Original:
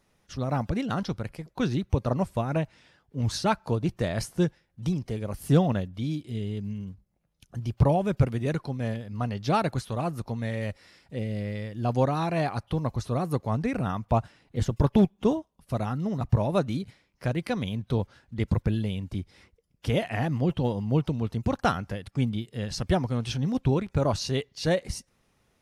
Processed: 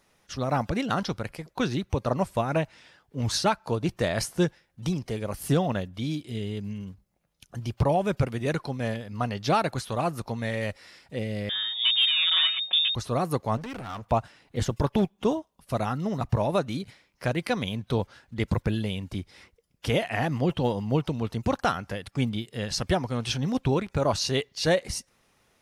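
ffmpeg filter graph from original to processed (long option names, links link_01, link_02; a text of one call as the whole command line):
ffmpeg -i in.wav -filter_complex "[0:a]asettb=1/sr,asplit=3[link_01][link_02][link_03];[link_01]atrim=end=11.494[link_04];[link_02]atrim=start=11.49:end=12.95,asetpts=PTS-STARTPTS,afade=type=in:duration=0.004:curve=qsin,afade=type=out:start_time=1.456:duration=0.004:curve=qsin,aeval=exprs='if(lt(val(0),0),0.251*val(0),val(0))':channel_layout=same,lowpass=frequency=3100:width_type=q:width=0.5098,lowpass=frequency=3100:width_type=q:width=0.6013,lowpass=frequency=3100:width_type=q:width=0.9,lowpass=frequency=3100:width_type=q:width=2.563,afreqshift=-3700,aecho=1:1:5.4:0.83,atrim=end_sample=64386[link_05];[link_03]atrim=start=12.946[link_06];[link_04][link_05]acrossfade=duration=0.004:curve1=hsin:curve2=qsin[link_07];[link_07][link_06]acrossfade=duration=0.004:curve1=qsin:curve2=hsin,asettb=1/sr,asplit=3[link_08][link_09][link_10];[link_08]atrim=end=13.574[link_11];[link_09]atrim=start=13.57:end=14.06,asetpts=PTS-STARTPTS,afade=type=in:duration=0.004:curve=qsin,afade=type=out:start_time=0.486:duration=0.004:curve=qsin,acompressor=threshold=-28dB:ratio=12:attack=3.2:release=140:knee=1:detection=peak,equalizer=frequency=180:width=7.7:gain=-8,asoftclip=type=hard:threshold=-35dB[link_12];[link_10]atrim=start=14.056[link_13];[link_11][link_12]acrossfade=duration=0.004:curve1=hsin:curve2=qsin[link_14];[link_14][link_13]acrossfade=duration=0.004:curve1=qsin:curve2=hsin,lowshelf=frequency=340:gain=-8,acontrast=37,alimiter=limit=-13.5dB:level=0:latency=1:release=345" out.wav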